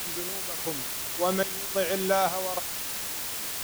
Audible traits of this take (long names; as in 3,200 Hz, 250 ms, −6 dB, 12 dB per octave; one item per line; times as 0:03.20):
sample-and-hold tremolo, depth 90%
a quantiser's noise floor 6 bits, dither triangular